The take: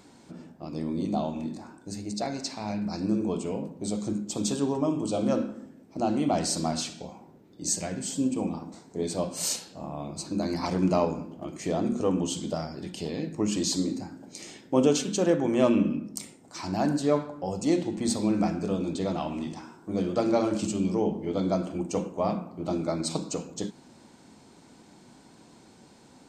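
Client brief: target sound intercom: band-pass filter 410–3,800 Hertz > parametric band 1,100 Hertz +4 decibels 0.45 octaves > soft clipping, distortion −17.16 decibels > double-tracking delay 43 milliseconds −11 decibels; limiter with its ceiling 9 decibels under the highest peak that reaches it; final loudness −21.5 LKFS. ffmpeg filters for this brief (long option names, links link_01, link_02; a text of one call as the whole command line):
ffmpeg -i in.wav -filter_complex "[0:a]alimiter=limit=-17.5dB:level=0:latency=1,highpass=410,lowpass=3800,equalizer=frequency=1100:width_type=o:width=0.45:gain=4,asoftclip=threshold=-24dB,asplit=2[link_01][link_02];[link_02]adelay=43,volume=-11dB[link_03];[link_01][link_03]amix=inputs=2:normalize=0,volume=14.5dB" out.wav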